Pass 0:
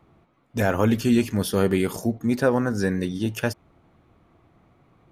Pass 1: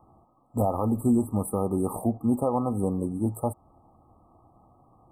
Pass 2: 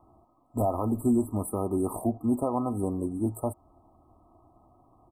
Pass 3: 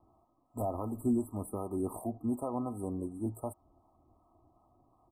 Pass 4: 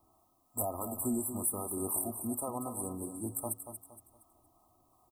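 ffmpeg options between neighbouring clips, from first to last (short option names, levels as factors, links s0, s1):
-af "afftfilt=real='re*(1-between(b*sr/4096,1300,7600))':imag='im*(1-between(b*sr/4096,1300,7600))':win_size=4096:overlap=0.75,equalizer=f=160:t=o:w=0.33:g=-7,equalizer=f=400:t=o:w=0.33:g=-5,equalizer=f=800:t=o:w=0.33:g=9,equalizer=f=1600:t=o:w=0.33:g=7,equalizer=f=12500:t=o:w=0.33:g=-4,alimiter=limit=0.2:level=0:latency=1:release=257"
-af "aecho=1:1:3:0.44,volume=0.794"
-filter_complex "[0:a]acrossover=split=640[s0][s1];[s0]aeval=exprs='val(0)*(1-0.5/2+0.5/2*cos(2*PI*2.7*n/s))':c=same[s2];[s1]aeval=exprs='val(0)*(1-0.5/2-0.5/2*cos(2*PI*2.7*n/s))':c=same[s3];[s2][s3]amix=inputs=2:normalize=0,volume=0.562"
-filter_complex "[0:a]crystalizer=i=10:c=0,asplit=2[s0][s1];[s1]aecho=0:1:233|466|699|932:0.355|0.124|0.0435|0.0152[s2];[s0][s2]amix=inputs=2:normalize=0,volume=0.562"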